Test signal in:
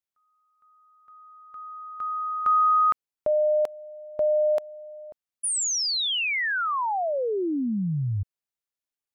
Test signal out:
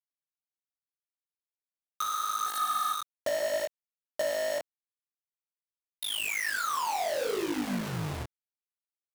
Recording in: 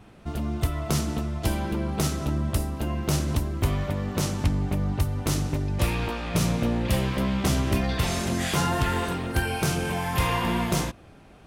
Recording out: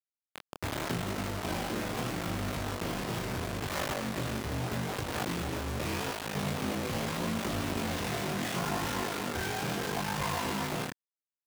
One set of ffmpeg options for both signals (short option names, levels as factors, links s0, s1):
-filter_complex "[0:a]acrossover=split=750[s0][s1];[s0]crystalizer=i=3:c=0[s2];[s1]lowpass=f=2100:p=1[s3];[s2][s3]amix=inputs=2:normalize=0,aeval=exprs='val(0)*sin(2*PI*26*n/s)':c=same,dynaudnorm=f=140:g=11:m=3.98,highpass=f=49:w=0.5412,highpass=f=49:w=1.3066,aecho=1:1:80|160|240|320:0.158|0.0697|0.0307|0.0135,aresample=8000,asoftclip=type=tanh:threshold=0.106,aresample=44100,acrusher=bits=3:mix=0:aa=0.000001,flanger=delay=20:depth=6.7:speed=0.79,alimiter=limit=0.0841:level=0:latency=1:release=108,lowshelf=f=110:g=-10.5,volume=0.708"